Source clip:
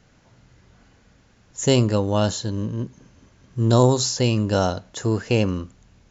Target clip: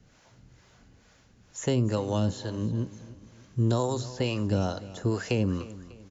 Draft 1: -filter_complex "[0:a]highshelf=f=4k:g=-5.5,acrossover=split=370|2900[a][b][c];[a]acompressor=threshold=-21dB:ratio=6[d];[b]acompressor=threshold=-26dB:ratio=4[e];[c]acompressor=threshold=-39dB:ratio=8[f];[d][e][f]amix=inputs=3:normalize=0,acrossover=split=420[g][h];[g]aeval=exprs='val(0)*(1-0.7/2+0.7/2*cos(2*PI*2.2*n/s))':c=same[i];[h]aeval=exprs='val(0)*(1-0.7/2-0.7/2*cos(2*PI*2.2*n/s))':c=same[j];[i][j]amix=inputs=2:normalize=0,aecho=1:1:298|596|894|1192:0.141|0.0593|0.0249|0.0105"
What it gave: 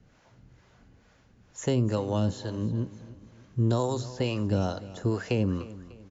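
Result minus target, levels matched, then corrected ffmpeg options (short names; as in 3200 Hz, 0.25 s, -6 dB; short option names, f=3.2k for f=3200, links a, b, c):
8000 Hz band -2.5 dB
-filter_complex "[0:a]highshelf=f=4k:g=5,acrossover=split=370|2900[a][b][c];[a]acompressor=threshold=-21dB:ratio=6[d];[b]acompressor=threshold=-26dB:ratio=4[e];[c]acompressor=threshold=-39dB:ratio=8[f];[d][e][f]amix=inputs=3:normalize=0,acrossover=split=420[g][h];[g]aeval=exprs='val(0)*(1-0.7/2+0.7/2*cos(2*PI*2.2*n/s))':c=same[i];[h]aeval=exprs='val(0)*(1-0.7/2-0.7/2*cos(2*PI*2.2*n/s))':c=same[j];[i][j]amix=inputs=2:normalize=0,aecho=1:1:298|596|894|1192:0.141|0.0593|0.0249|0.0105"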